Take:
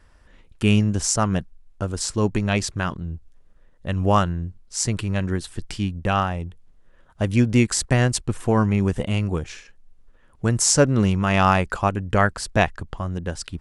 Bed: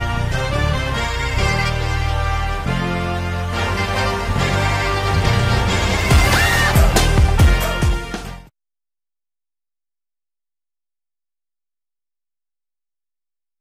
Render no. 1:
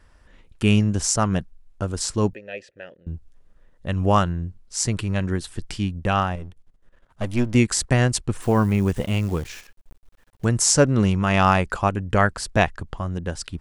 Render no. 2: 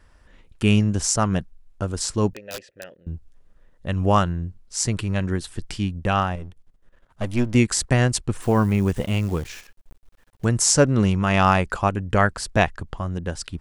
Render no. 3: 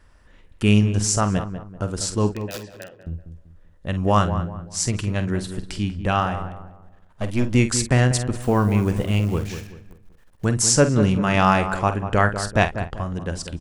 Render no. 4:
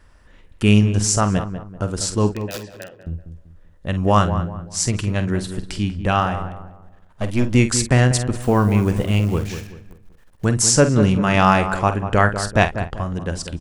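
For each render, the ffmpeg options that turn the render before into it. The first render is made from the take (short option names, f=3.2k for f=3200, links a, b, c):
-filter_complex "[0:a]asettb=1/sr,asplit=3[a][b][c];[a]atrim=end=2.334[d];[b]atrim=start=2.33:end=3.07,asetpts=PTS-STARTPTS,afade=t=in:d=0.004:c=qsin,afade=t=out:st=0.736:d=0.004:c=qsin,asplit=3[e][f][g];[e]bandpass=f=530:t=q:w=8,volume=0dB[h];[f]bandpass=f=1.84k:t=q:w=8,volume=-6dB[i];[g]bandpass=f=2.48k:t=q:w=8,volume=-9dB[j];[h][i][j]amix=inputs=3:normalize=0[k];[c]atrim=start=3.066[l];[d][k]acrossfade=d=0.004:c1=hsin:c2=qsin[m];[m][l]acrossfade=d=0.004:c1=qsin:c2=hsin,asettb=1/sr,asplit=3[n][o][p];[n]atrim=end=6.354[q];[o]atrim=start=6.35:end=7.55,asetpts=PTS-STARTPTS,afade=t=in:d=0.004:c=qsin,afade=t=out:st=1.196:d=0.004:c=qsin,aeval=exprs='if(lt(val(0),0),0.251*val(0),val(0))':c=same[r];[p]atrim=start=7.546[s];[q][r]acrossfade=d=0.004:c1=hsin:c2=qsin[t];[t][s]acrossfade=d=0.004:c1=qsin:c2=hsin,asettb=1/sr,asplit=3[u][v][w];[u]atrim=end=8.364[x];[v]atrim=start=8.36:end=10.45,asetpts=PTS-STARTPTS,afade=t=in:d=0.004:c=qsin,afade=t=out:st=2.086:d=0.004:c=qsin,acrusher=bits=8:dc=4:mix=0:aa=0.000001[y];[w]atrim=start=10.446[z];[x][y]acrossfade=d=0.004:c1=hsin:c2=qsin[aa];[aa][z]acrossfade=d=0.004:c1=qsin:c2=hsin"
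-filter_complex "[0:a]asettb=1/sr,asplit=3[a][b][c];[a]atrim=end=2.334[d];[b]atrim=start=2.33:end=2.96,asetpts=PTS-STARTPTS,afade=t=in:d=0.004:c=qsin,afade=t=out:st=0.626:d=0.004:c=qsin,aeval=exprs='(mod(18.8*val(0)+1,2)-1)/18.8':c=same[e];[c]atrim=start=2.956[f];[d][e]acrossfade=d=0.004:c1=hsin:c2=qsin[g];[g][f]acrossfade=d=0.004:c1=qsin:c2=hsin"
-filter_complex "[0:a]asplit=2[a][b];[b]adelay=48,volume=-11dB[c];[a][c]amix=inputs=2:normalize=0,asplit=2[d][e];[e]adelay=193,lowpass=f=1.4k:p=1,volume=-9.5dB,asplit=2[f][g];[g]adelay=193,lowpass=f=1.4k:p=1,volume=0.36,asplit=2[h][i];[i]adelay=193,lowpass=f=1.4k:p=1,volume=0.36,asplit=2[j][k];[k]adelay=193,lowpass=f=1.4k:p=1,volume=0.36[l];[d][f][h][j][l]amix=inputs=5:normalize=0"
-af "volume=2.5dB,alimiter=limit=-1dB:level=0:latency=1"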